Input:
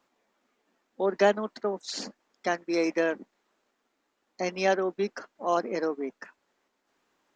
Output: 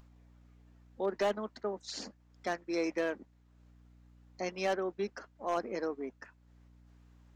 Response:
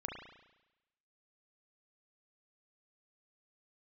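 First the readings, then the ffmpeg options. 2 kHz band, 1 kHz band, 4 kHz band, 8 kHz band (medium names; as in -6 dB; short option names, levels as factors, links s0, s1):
-8.0 dB, -7.5 dB, -6.5 dB, -7.0 dB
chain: -af "asoftclip=type=hard:threshold=0.133,aeval=exprs='val(0)+0.00141*(sin(2*PI*60*n/s)+sin(2*PI*2*60*n/s)/2+sin(2*PI*3*60*n/s)/3+sin(2*PI*4*60*n/s)/4+sin(2*PI*5*60*n/s)/5)':c=same,acompressor=mode=upward:threshold=0.00501:ratio=2.5,volume=0.473"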